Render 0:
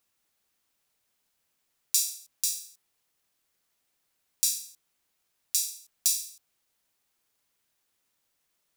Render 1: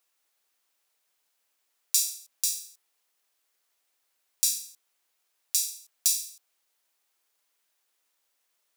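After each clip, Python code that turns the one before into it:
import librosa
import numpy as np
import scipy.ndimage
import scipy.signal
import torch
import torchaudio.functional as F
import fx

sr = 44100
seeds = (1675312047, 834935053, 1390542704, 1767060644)

y = scipy.signal.sosfilt(scipy.signal.butter(2, 420.0, 'highpass', fs=sr, output='sos'), x)
y = F.gain(torch.from_numpy(y), 1.0).numpy()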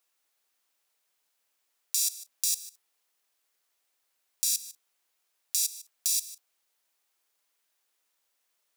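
y = fx.level_steps(x, sr, step_db=17)
y = F.gain(torch.from_numpy(y), 8.0).numpy()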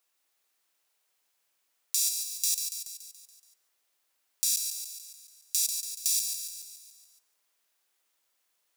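y = fx.echo_feedback(x, sr, ms=142, feedback_pct=57, wet_db=-6.5)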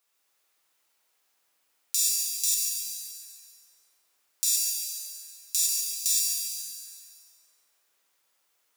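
y = fx.rev_plate(x, sr, seeds[0], rt60_s=3.2, hf_ratio=0.5, predelay_ms=0, drr_db=-3.0)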